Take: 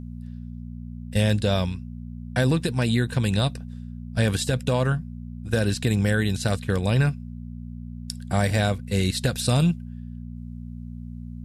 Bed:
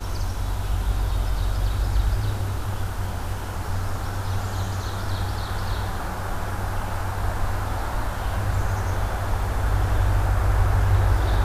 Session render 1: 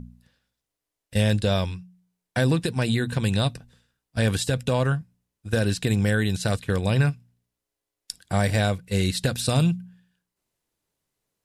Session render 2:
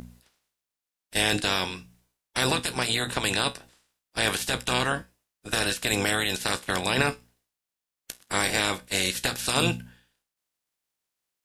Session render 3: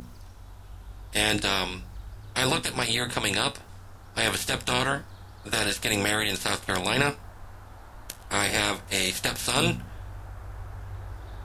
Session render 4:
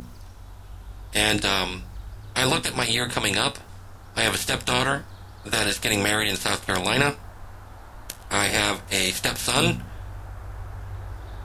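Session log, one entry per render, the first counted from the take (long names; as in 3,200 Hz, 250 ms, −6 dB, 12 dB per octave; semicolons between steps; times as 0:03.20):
hum removal 60 Hz, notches 4
ceiling on every frequency bin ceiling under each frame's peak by 26 dB; tuned comb filter 62 Hz, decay 0.21 s, harmonics all, mix 60%
mix in bed −19.5 dB
level +3 dB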